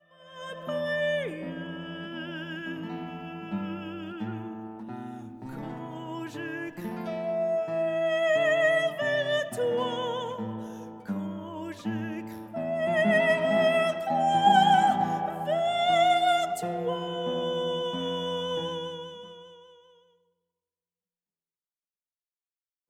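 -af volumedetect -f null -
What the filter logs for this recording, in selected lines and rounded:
mean_volume: -28.8 dB
max_volume: -9.5 dB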